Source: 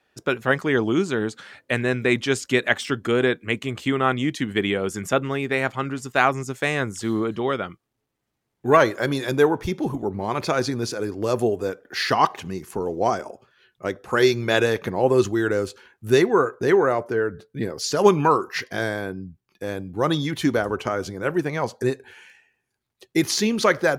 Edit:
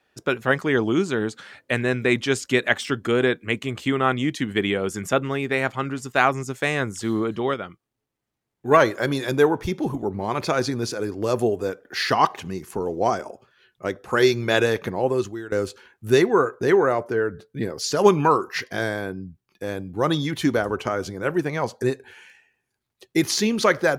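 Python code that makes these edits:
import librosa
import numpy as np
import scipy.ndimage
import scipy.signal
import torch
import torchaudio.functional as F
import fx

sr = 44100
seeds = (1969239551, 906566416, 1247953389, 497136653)

y = fx.edit(x, sr, fx.clip_gain(start_s=7.54, length_s=1.17, db=-4.0),
    fx.fade_out_to(start_s=14.82, length_s=0.7, floor_db=-18.0), tone=tone)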